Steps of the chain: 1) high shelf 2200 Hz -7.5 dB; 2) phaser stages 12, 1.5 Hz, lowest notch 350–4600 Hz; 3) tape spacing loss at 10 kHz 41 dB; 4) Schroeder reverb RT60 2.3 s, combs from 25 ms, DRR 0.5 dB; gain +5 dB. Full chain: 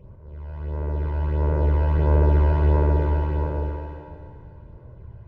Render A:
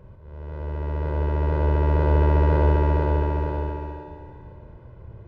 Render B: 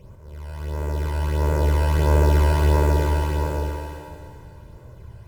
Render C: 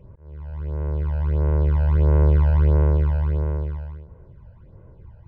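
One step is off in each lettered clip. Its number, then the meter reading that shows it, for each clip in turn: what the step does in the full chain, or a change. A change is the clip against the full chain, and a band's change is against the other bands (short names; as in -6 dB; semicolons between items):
2, 125 Hz band -3.5 dB; 3, 2 kHz band +5.5 dB; 4, 1 kHz band -4.5 dB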